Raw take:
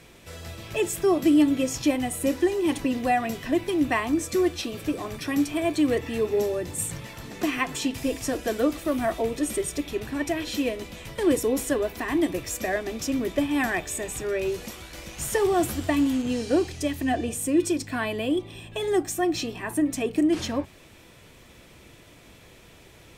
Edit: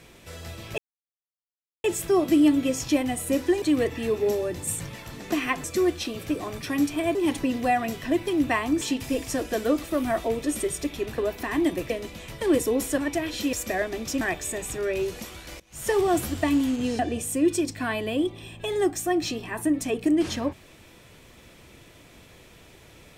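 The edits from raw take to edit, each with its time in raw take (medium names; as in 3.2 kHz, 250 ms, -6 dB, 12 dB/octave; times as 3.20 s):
0.78 s: insert silence 1.06 s
2.56–4.22 s: swap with 5.73–7.75 s
10.12–10.67 s: swap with 11.75–12.47 s
13.15–13.67 s: delete
15.06–15.36 s: fade in quadratic, from -23.5 dB
16.45–17.11 s: delete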